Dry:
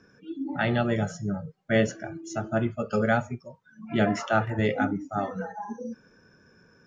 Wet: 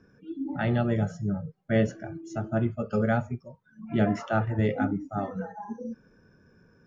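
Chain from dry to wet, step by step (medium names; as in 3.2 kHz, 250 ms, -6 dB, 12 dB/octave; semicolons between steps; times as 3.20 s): tilt EQ -2 dB/octave; trim -4 dB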